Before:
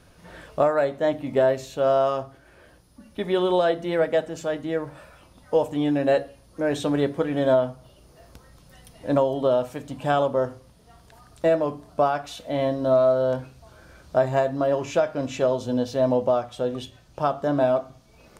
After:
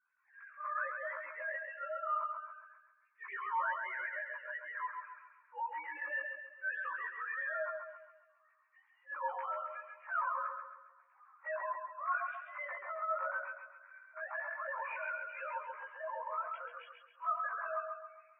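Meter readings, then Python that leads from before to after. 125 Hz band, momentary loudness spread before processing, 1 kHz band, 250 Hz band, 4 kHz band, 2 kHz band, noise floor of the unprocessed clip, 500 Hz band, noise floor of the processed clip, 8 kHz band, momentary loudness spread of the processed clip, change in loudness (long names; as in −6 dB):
below −40 dB, 10 LU, −9.0 dB, below −40 dB, below −25 dB, −1.5 dB, −54 dBFS, −25.0 dB, −71 dBFS, can't be measured, 14 LU, −16.0 dB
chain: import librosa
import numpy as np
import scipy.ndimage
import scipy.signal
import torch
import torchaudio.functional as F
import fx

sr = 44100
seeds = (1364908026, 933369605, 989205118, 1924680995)

p1 = fx.sine_speech(x, sr)
p2 = scipy.signal.sosfilt(scipy.signal.cheby1(3, 1.0, [1000.0, 2400.0], 'bandpass', fs=sr, output='sos'), p1)
p3 = fx.chorus_voices(p2, sr, voices=6, hz=0.19, base_ms=18, depth_ms=2.9, mix_pct=55)
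p4 = fx.transient(p3, sr, attack_db=-10, sustain_db=3)
p5 = fx.over_compress(p4, sr, threshold_db=-51.0, ratio=-0.5)
p6 = p4 + (p5 * librosa.db_to_amplitude(-1.5))
p7 = fx.air_absorb(p6, sr, metres=130.0)
p8 = fx.doubler(p7, sr, ms=13.0, db=-7)
p9 = p8 + fx.echo_feedback(p8, sr, ms=135, feedback_pct=57, wet_db=-3.5, dry=0)
p10 = fx.spectral_expand(p9, sr, expansion=1.5)
y = p10 * librosa.db_to_amplitude(4.5)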